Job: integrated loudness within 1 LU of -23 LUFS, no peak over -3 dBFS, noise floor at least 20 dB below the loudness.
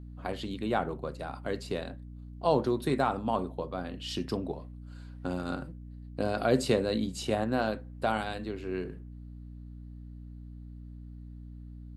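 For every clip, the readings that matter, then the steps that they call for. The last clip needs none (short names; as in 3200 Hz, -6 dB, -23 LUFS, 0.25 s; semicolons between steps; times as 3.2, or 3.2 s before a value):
hum 60 Hz; harmonics up to 300 Hz; hum level -42 dBFS; loudness -32.0 LUFS; peak -12.5 dBFS; loudness target -23.0 LUFS
-> de-hum 60 Hz, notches 5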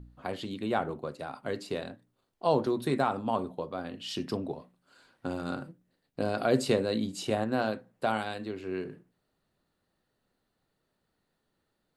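hum none; loudness -32.0 LUFS; peak -12.5 dBFS; loudness target -23.0 LUFS
-> gain +9 dB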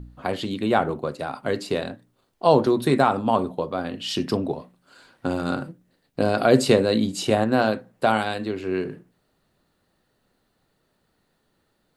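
loudness -23.5 LUFS; peak -3.5 dBFS; noise floor -70 dBFS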